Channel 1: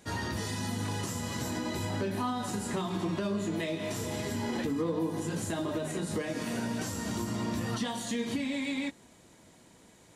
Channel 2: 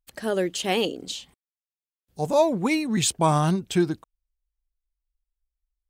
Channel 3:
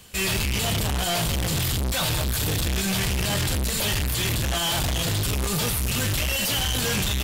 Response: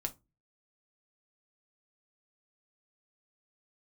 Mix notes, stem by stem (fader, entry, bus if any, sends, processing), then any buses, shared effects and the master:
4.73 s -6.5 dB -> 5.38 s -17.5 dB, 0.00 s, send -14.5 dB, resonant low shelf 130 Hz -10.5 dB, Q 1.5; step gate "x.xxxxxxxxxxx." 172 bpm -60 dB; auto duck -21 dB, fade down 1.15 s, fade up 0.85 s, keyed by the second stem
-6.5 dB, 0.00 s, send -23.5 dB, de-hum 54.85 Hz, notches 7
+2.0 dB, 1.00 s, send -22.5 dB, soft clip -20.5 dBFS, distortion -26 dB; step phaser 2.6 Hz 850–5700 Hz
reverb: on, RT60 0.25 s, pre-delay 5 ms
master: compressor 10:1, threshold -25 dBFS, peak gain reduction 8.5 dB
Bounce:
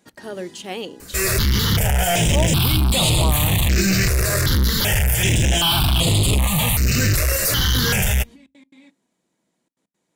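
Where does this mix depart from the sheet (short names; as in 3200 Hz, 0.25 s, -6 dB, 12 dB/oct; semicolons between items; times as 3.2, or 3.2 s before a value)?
stem 3 +2.0 dB -> +9.5 dB; master: missing compressor 10:1, threshold -25 dBFS, peak gain reduction 8.5 dB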